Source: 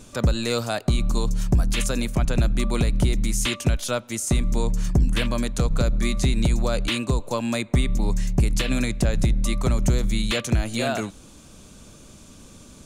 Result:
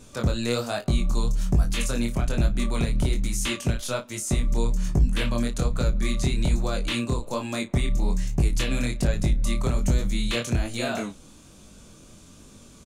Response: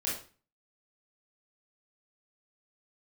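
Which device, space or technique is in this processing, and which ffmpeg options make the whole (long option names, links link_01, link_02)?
double-tracked vocal: -filter_complex "[0:a]asplit=2[link_01][link_02];[link_02]adelay=34,volume=-13dB[link_03];[link_01][link_03]amix=inputs=2:normalize=0,flanger=delay=19.5:depth=6.4:speed=1.2"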